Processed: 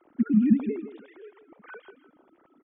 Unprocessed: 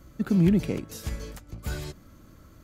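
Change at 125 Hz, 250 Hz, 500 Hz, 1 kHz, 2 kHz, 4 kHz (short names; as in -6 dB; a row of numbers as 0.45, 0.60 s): -9.5 dB, +1.5 dB, -4.0 dB, -4.5 dB, -4.5 dB, under -15 dB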